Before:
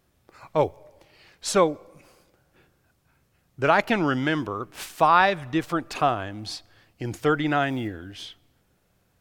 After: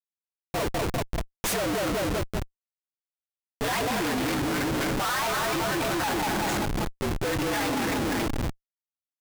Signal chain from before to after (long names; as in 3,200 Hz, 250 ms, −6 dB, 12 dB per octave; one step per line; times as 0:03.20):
partials spread apart or drawn together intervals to 115%
parametric band 89 Hz −14 dB 0.87 octaves
on a send: echo with a time of its own for lows and highs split 1,400 Hz, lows 192 ms, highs 279 ms, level −5 dB
on the sum: comparator with hysteresis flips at −35.5 dBFS
level +2 dB